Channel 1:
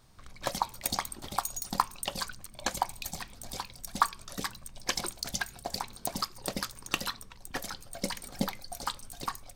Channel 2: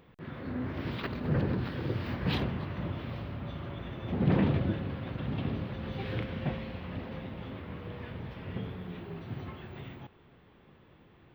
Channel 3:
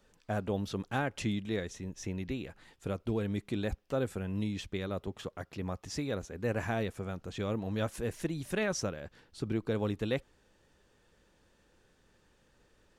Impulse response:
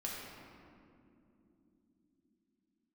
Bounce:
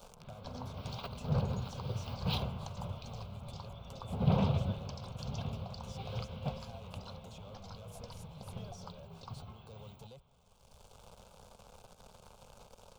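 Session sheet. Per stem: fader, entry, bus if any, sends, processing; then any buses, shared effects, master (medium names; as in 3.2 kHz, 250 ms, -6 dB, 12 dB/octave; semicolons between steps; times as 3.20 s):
-1.0 dB, 0.00 s, bus A, no send, low-pass 5.2 kHz 24 dB/octave; gate -41 dBFS, range -18 dB; compression, threshold -35 dBFS, peak gain reduction 16 dB
+2.5 dB, 0.00 s, no bus, no send, treble shelf 2.7 kHz +7 dB; upward expansion 1.5:1, over -42 dBFS
-12.5 dB, 0.00 s, bus A, no send, compression, threshold -35 dBFS, peak gain reduction 8.5 dB; waveshaping leveller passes 3; three bands compressed up and down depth 100%
bus A: 0.0 dB, compression 2:1, threshold -49 dBFS, peak gain reduction 10.5 dB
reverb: none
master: static phaser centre 760 Hz, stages 4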